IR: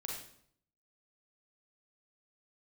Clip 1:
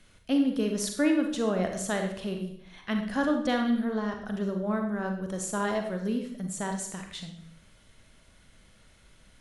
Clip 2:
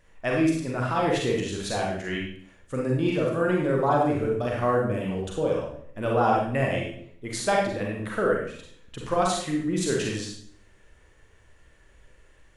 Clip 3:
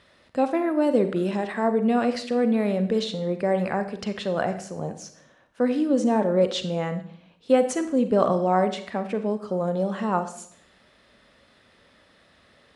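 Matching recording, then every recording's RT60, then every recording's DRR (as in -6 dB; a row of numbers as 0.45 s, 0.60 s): 2; 0.65 s, 0.65 s, 0.65 s; 3.5 dB, -2.0 dB, 9.0 dB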